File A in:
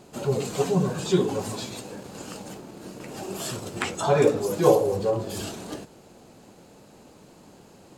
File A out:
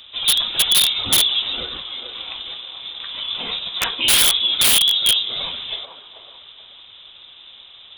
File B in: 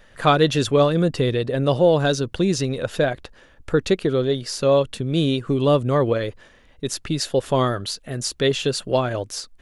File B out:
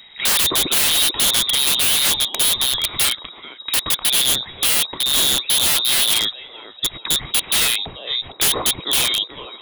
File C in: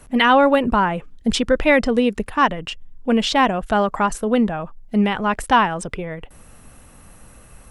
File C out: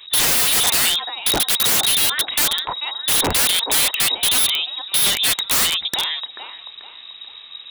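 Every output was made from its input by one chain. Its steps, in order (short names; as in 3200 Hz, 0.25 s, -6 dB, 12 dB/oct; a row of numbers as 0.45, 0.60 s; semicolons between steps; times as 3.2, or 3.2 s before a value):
inverted band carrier 3800 Hz; band-limited delay 0.437 s, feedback 36%, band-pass 650 Hz, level -5.5 dB; wrapped overs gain 16 dB; match loudness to -16 LUFS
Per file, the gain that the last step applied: +7.5, +5.0, +4.5 dB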